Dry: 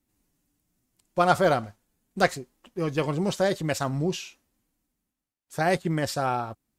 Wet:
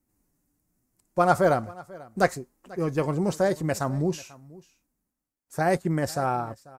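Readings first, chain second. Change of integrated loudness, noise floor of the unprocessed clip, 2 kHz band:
+0.5 dB, below −85 dBFS, −2.0 dB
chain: parametric band 3,300 Hz −12 dB 1 octave
single-tap delay 491 ms −21.5 dB
level +1 dB

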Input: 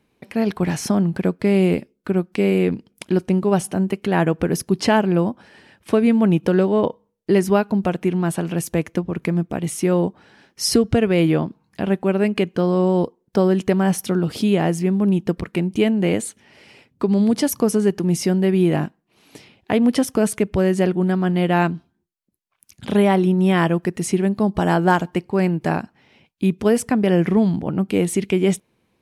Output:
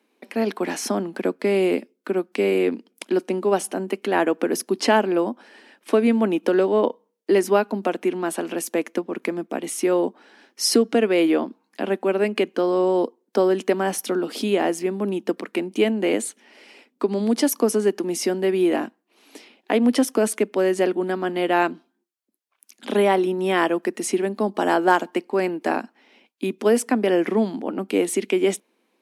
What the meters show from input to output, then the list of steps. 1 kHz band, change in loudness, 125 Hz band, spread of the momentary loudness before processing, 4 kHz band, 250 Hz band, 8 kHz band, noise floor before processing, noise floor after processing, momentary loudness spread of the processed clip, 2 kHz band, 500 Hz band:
0.0 dB, −2.5 dB, −15.0 dB, 7 LU, 0.0 dB, −5.0 dB, 0.0 dB, −69 dBFS, −72 dBFS, 8 LU, 0.0 dB, 0.0 dB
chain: Butterworth high-pass 230 Hz 48 dB per octave

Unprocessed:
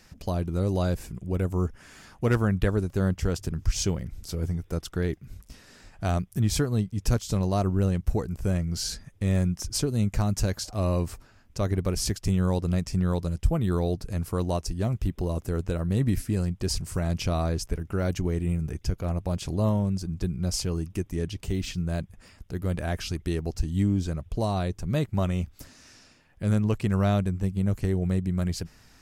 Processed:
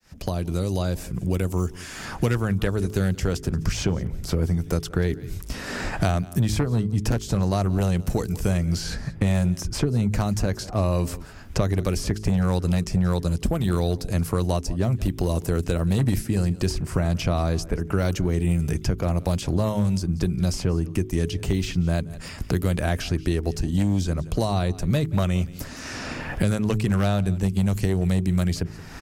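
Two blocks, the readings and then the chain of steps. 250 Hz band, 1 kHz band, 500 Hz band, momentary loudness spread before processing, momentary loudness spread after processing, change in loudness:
+3.5 dB, +3.5 dB, +3.0 dB, 7 LU, 5 LU, +3.0 dB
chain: fade in at the beginning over 3.93 s
hum removal 53.09 Hz, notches 8
in parallel at −6.5 dB: soft clipping −26.5 dBFS, distortion −9 dB
on the sum: harmonic generator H 5 −7 dB, 7 −12 dB, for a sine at −10.5 dBFS
on a send: single-tap delay 175 ms −22.5 dB
on the sum: multiband upward and downward compressor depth 100%
level −3 dB

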